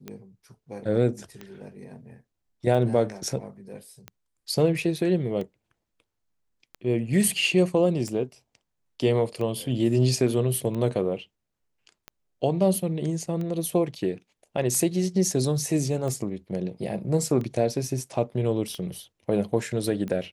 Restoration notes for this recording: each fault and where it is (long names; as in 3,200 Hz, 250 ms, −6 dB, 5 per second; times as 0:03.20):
scratch tick 45 rpm −22 dBFS